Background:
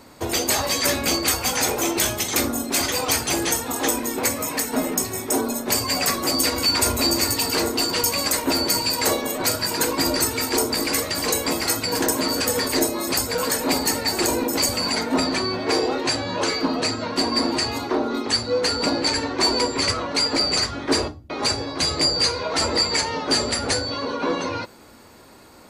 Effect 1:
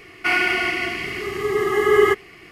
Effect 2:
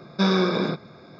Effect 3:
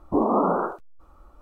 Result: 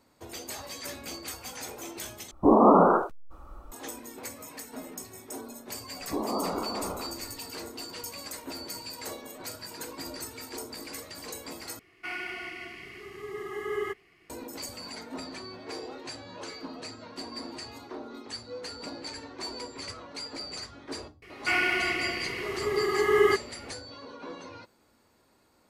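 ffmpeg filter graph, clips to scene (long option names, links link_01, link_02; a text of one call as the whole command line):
ffmpeg -i bed.wav -i cue0.wav -i cue1.wav -i cue2.wav -filter_complex "[3:a]asplit=2[link_01][link_02];[1:a]asplit=2[link_03][link_04];[0:a]volume=-18dB[link_05];[link_01]dynaudnorm=framelen=100:gausssize=3:maxgain=9dB[link_06];[link_02]aecho=1:1:415:0.596[link_07];[link_05]asplit=3[link_08][link_09][link_10];[link_08]atrim=end=2.314[link_11];[link_06]atrim=end=1.41,asetpts=PTS-STARTPTS,volume=-3.5dB[link_12];[link_09]atrim=start=3.716:end=11.794[link_13];[link_03]atrim=end=2.51,asetpts=PTS-STARTPTS,volume=-17dB[link_14];[link_10]atrim=start=14.296[link_15];[link_07]atrim=end=1.41,asetpts=PTS-STARTPTS,volume=-10dB,afade=type=in:duration=0.004:curve=hsin,afade=type=out:start_time=1.406:duration=0.004:curve=hsin,adelay=5990[link_16];[link_04]atrim=end=2.51,asetpts=PTS-STARTPTS,volume=-6.5dB,afade=type=in:duration=0.004:curve=hsin,afade=type=out:start_time=2.506:duration=0.004:curve=hsin,adelay=21220[link_17];[link_11][link_12]acrossfade=duration=0.004:curve1=hsin:curve2=hsin[link_18];[link_18][link_13]acrossfade=duration=0.004:curve1=hsin:curve2=hsin[link_19];[link_19][link_14]acrossfade=duration=0.004:curve1=hsin:curve2=hsin[link_20];[link_20][link_15]acrossfade=duration=0.004:curve1=hsin:curve2=hsin[link_21];[link_21][link_16][link_17]amix=inputs=3:normalize=0" out.wav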